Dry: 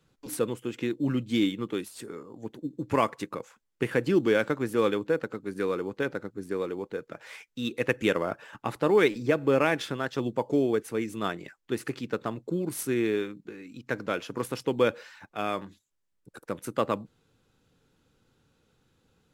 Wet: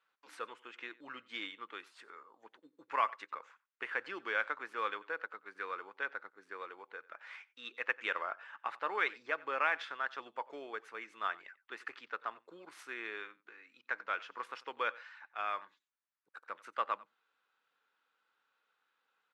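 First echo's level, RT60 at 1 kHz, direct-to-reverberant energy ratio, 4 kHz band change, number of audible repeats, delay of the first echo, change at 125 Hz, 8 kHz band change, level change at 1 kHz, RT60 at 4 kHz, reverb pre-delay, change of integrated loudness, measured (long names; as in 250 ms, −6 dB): −21.5 dB, no reverb audible, no reverb audible, −9.0 dB, 1, 92 ms, below −35 dB, below −20 dB, −3.5 dB, no reverb audible, no reverb audible, −10.5 dB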